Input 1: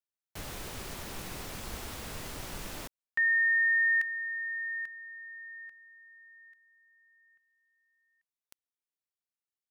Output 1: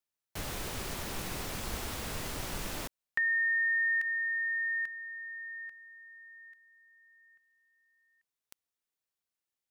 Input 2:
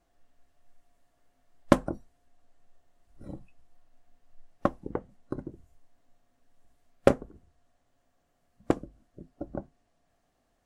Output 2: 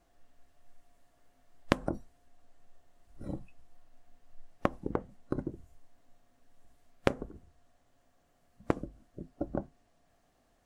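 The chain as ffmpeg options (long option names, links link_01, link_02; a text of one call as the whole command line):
ffmpeg -i in.wav -af "acompressor=threshold=-30dB:ratio=12:attack=9.6:release=180:knee=1:detection=peak,volume=3dB" out.wav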